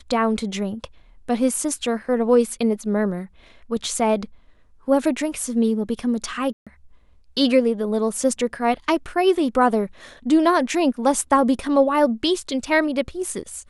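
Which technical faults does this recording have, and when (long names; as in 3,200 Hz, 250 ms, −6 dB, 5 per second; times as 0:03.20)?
0:06.53–0:06.67: drop-out 136 ms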